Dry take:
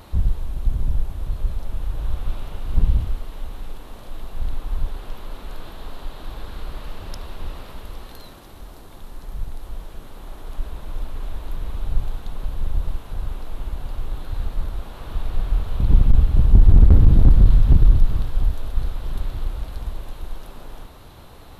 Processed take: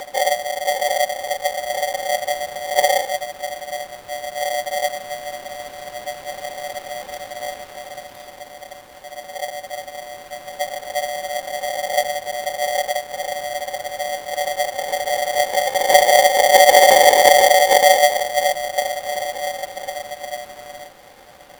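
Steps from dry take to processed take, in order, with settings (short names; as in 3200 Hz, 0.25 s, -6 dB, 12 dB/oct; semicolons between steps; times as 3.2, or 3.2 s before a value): reverse echo 1.018 s -10.5 dB; frequency shift +52 Hz; polarity switched at an audio rate 660 Hz; gain -2.5 dB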